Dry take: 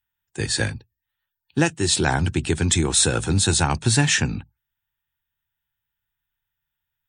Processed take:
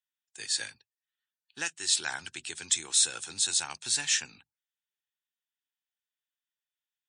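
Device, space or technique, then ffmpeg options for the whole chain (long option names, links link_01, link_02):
piezo pickup straight into a mixer: -filter_complex "[0:a]lowpass=6500,aderivative,asettb=1/sr,asplit=3[link_01][link_02][link_03];[link_01]atrim=end=0.714[link_04];[link_02]atrim=start=0.71:end=2.41,asetpts=PTS-STARTPTS,afade=type=in:duration=0.004:curve=qsin,afade=type=out:start_time=1.696:duration=0.004:curve=qsin,equalizer=frequency=1500:width_type=o:width=0.99:gain=4[link_05];[link_03]atrim=start=2.406[link_06];[link_04][link_05]acrossfade=duration=0.004:curve1=hsin:curve2=qsin[link_07];[link_07][link_06]acrossfade=duration=0.004:curve1=qsin:curve2=hsin"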